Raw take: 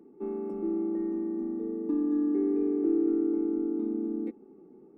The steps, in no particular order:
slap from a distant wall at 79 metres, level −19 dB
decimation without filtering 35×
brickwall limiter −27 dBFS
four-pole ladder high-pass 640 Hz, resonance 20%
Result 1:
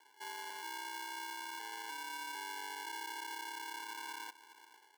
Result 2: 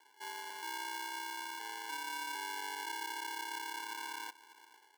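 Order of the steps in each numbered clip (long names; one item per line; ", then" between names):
slap from a distant wall, then brickwall limiter, then decimation without filtering, then four-pole ladder high-pass
slap from a distant wall, then decimation without filtering, then four-pole ladder high-pass, then brickwall limiter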